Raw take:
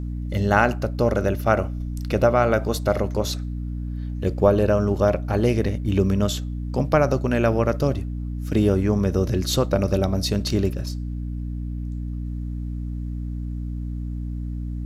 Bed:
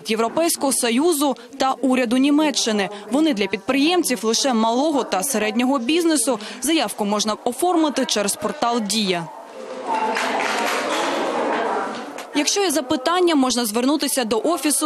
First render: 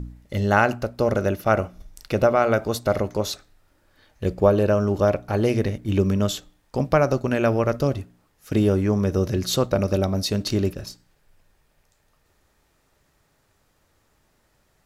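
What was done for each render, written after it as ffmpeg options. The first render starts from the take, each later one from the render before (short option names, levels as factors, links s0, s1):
-af "bandreject=f=60:t=h:w=4,bandreject=f=120:t=h:w=4,bandreject=f=180:t=h:w=4,bandreject=f=240:t=h:w=4,bandreject=f=300:t=h:w=4"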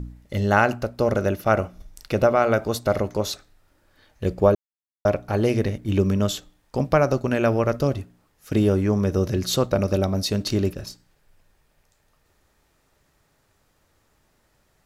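-filter_complex "[0:a]asplit=3[s0][s1][s2];[s0]atrim=end=4.55,asetpts=PTS-STARTPTS,afade=t=out:st=4.546:d=0.004:c=hsin[s3];[s1]atrim=start=4.55:end=5.05,asetpts=PTS-STARTPTS,volume=0[s4];[s2]atrim=start=5.05,asetpts=PTS-STARTPTS,afade=t=in:d=0.004:c=hsin[s5];[s3][s4][s5]concat=n=3:v=0:a=1"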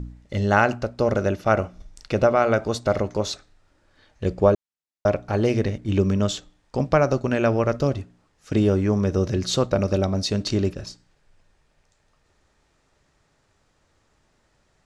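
-af "lowpass=f=8300:w=0.5412,lowpass=f=8300:w=1.3066"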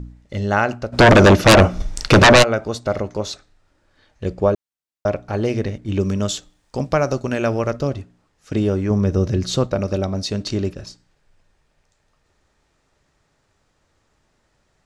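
-filter_complex "[0:a]asplit=3[s0][s1][s2];[s0]afade=t=out:st=0.92:d=0.02[s3];[s1]aeval=exprs='0.562*sin(PI/2*5.62*val(0)/0.562)':c=same,afade=t=in:st=0.92:d=0.02,afade=t=out:st=2.42:d=0.02[s4];[s2]afade=t=in:st=2.42:d=0.02[s5];[s3][s4][s5]amix=inputs=3:normalize=0,asettb=1/sr,asplit=3[s6][s7][s8];[s6]atrim=end=6.004[s9];[s7]atrim=start=6:end=7.71,asetpts=PTS-STARTPTS,afade=t=in:d=0.004:c=qsin,afade=t=out:st=1.706:d=0.004:c=qsin,highshelf=f=6000:g=11[s10];[s8]atrim=start=7.706[s11];[s9][s10]acrossfade=d=0.004:c1=hsin:c2=qsin[s12];[s12][s11]acrossfade=d=0.004:c1=qsin:c2=hsin,asettb=1/sr,asplit=3[s13][s14][s15];[s13]atrim=end=8.904[s16];[s14]atrim=start=8.9:end=9.67,asetpts=PTS-STARTPTS,afade=t=in:d=0.004:c=qsin,afade=t=out:st=0.766:d=0.004:c=qsin,lowshelf=f=260:g=6[s17];[s15]atrim=start=9.666[s18];[s16][s17]acrossfade=d=0.004:c1=hsin:c2=qsin[s19];[s19][s18]acrossfade=d=0.004:c1=qsin:c2=hsin"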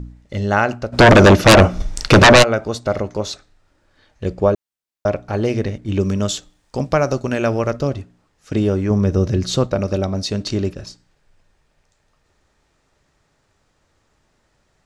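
-af "volume=1.19"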